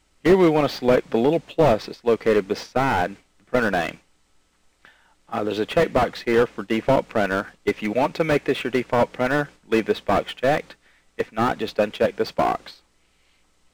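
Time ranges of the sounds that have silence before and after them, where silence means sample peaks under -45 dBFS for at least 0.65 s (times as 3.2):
4.85–12.78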